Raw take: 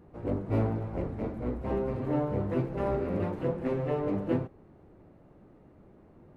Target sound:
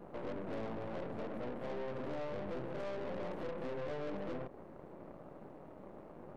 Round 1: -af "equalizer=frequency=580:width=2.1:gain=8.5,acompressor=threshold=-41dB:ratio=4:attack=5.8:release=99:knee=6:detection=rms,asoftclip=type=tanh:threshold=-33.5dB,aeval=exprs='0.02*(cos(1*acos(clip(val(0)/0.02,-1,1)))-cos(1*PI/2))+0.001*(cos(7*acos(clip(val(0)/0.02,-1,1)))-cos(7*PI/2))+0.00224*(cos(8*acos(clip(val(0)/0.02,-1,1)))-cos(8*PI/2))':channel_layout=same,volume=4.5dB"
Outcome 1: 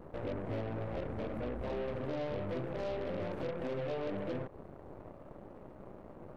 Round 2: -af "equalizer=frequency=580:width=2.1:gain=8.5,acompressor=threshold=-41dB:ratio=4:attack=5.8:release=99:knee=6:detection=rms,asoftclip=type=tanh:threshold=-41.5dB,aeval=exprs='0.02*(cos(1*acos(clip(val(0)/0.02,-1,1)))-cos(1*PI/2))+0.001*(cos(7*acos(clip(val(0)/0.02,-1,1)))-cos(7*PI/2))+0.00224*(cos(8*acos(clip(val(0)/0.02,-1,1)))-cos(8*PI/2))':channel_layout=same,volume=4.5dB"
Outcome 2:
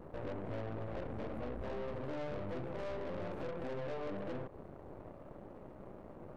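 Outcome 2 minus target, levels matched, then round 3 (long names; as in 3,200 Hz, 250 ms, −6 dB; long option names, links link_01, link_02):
125 Hz band +4.0 dB
-af "highpass=frequency=140:width=0.5412,highpass=frequency=140:width=1.3066,equalizer=frequency=580:width=2.1:gain=8.5,acompressor=threshold=-41dB:ratio=4:attack=5.8:release=99:knee=6:detection=rms,asoftclip=type=tanh:threshold=-41.5dB,aeval=exprs='0.02*(cos(1*acos(clip(val(0)/0.02,-1,1)))-cos(1*PI/2))+0.001*(cos(7*acos(clip(val(0)/0.02,-1,1)))-cos(7*PI/2))+0.00224*(cos(8*acos(clip(val(0)/0.02,-1,1)))-cos(8*PI/2))':channel_layout=same,volume=4.5dB"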